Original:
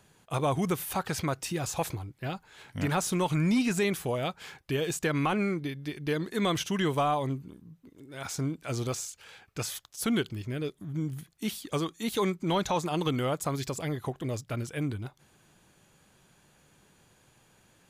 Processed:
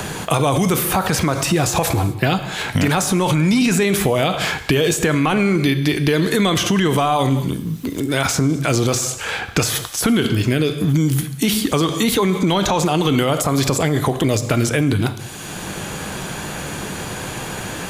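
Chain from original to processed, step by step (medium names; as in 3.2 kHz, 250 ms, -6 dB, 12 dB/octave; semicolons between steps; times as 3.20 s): gated-style reverb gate 270 ms falling, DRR 11 dB; loudness maximiser +28 dB; three bands compressed up and down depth 70%; trim -8 dB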